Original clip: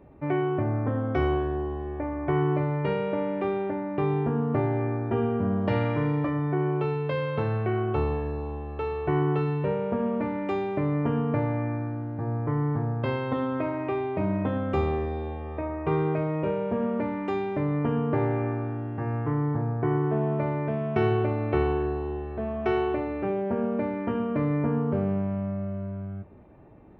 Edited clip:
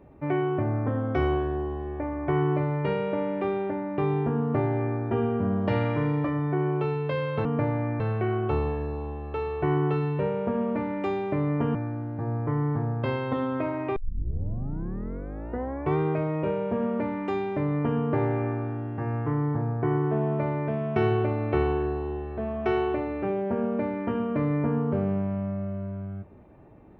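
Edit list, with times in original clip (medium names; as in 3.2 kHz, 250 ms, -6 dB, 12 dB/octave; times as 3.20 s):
11.20–11.75 s: move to 7.45 s
13.96 s: tape start 2.02 s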